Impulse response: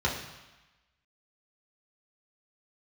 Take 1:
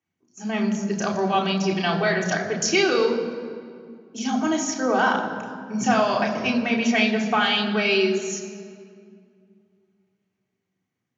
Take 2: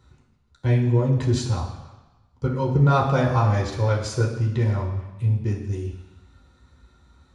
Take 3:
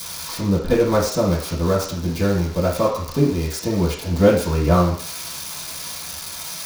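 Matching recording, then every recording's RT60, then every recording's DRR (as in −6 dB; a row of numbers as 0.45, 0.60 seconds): 2; 2.2, 1.1, 0.55 seconds; −2.0, −4.5, −11.0 decibels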